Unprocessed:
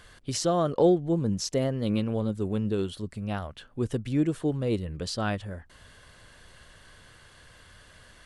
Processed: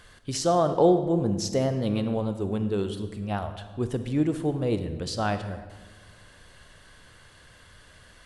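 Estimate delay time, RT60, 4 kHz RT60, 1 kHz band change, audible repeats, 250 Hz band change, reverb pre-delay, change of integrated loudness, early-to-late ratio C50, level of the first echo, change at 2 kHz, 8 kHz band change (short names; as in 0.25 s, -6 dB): none, 1.3 s, 0.90 s, +5.0 dB, none, +1.0 dB, 36 ms, +1.5 dB, 10.0 dB, none, +1.0 dB, +0.5 dB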